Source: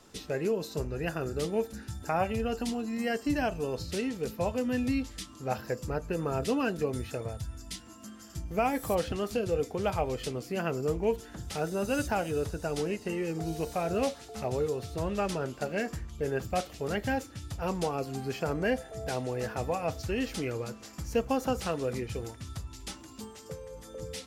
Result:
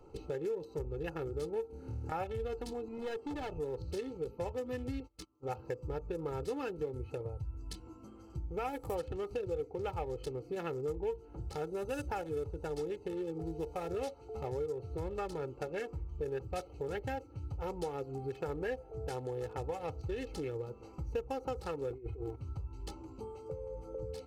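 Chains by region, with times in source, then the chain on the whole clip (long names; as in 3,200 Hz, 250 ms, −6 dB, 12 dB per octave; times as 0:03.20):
0:01.67–0:02.12: downward compressor 2.5 to 1, threshold −41 dBFS + flutter between parallel walls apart 4.6 metres, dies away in 1.2 s
0:02.88–0:03.57: high-pass filter 70 Hz + high-shelf EQ 5,700 Hz −8 dB + hard clipping −30 dBFS
0:05.00–0:05.49: noise gate −41 dBFS, range −23 dB + low-shelf EQ 110 Hz −11.5 dB
0:21.90–0:22.36: running median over 9 samples + comb filter 2.8 ms, depth 95% + compressor whose output falls as the input rises −37 dBFS, ratio −0.5
whole clip: adaptive Wiener filter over 25 samples; comb filter 2.3 ms, depth 73%; downward compressor 2.5 to 1, threshold −41 dBFS; level +1.5 dB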